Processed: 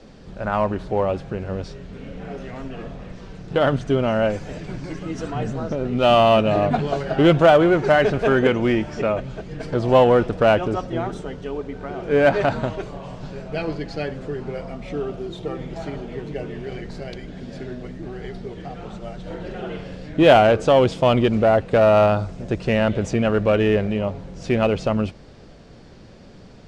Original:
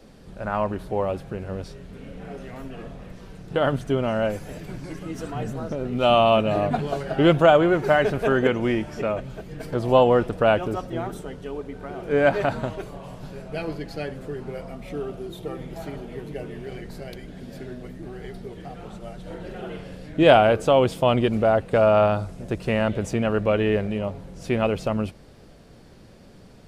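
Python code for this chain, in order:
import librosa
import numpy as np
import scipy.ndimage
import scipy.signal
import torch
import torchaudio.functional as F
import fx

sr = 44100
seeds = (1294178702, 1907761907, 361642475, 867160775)

p1 = scipy.signal.sosfilt(scipy.signal.butter(4, 7100.0, 'lowpass', fs=sr, output='sos'), x)
p2 = np.clip(p1, -10.0 ** (-17.5 / 20.0), 10.0 ** (-17.5 / 20.0))
y = p1 + (p2 * 10.0 ** (-5.0 / 20.0))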